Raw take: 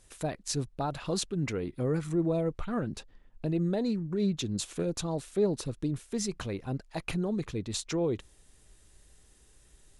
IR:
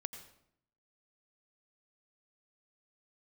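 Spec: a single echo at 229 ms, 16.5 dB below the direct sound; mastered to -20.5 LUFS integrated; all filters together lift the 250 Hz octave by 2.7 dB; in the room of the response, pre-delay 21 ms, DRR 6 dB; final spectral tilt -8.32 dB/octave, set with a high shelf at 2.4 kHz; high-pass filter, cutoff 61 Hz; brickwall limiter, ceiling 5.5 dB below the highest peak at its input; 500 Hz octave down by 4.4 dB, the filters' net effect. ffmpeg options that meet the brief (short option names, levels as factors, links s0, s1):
-filter_complex "[0:a]highpass=61,equalizer=f=250:t=o:g=6.5,equalizer=f=500:t=o:g=-8.5,highshelf=f=2400:g=-8,alimiter=limit=0.0668:level=0:latency=1,aecho=1:1:229:0.15,asplit=2[s0][s1];[1:a]atrim=start_sample=2205,adelay=21[s2];[s1][s2]afir=irnorm=-1:irlink=0,volume=0.631[s3];[s0][s3]amix=inputs=2:normalize=0,volume=3.98"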